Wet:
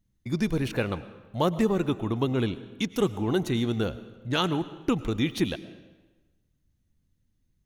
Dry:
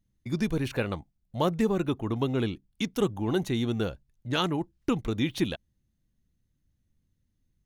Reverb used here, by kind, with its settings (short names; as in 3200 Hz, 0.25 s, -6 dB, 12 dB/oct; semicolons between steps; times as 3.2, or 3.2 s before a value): digital reverb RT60 1.2 s, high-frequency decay 0.85×, pre-delay 70 ms, DRR 15 dB; gain +1.5 dB